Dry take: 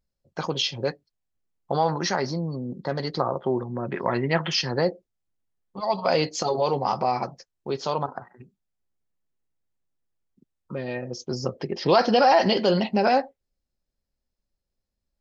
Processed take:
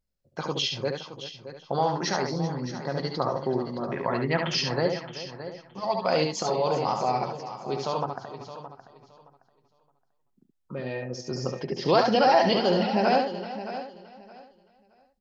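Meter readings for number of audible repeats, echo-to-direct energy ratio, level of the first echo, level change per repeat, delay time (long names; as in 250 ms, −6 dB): 7, −3.5 dB, −5.0 dB, repeats not evenly spaced, 71 ms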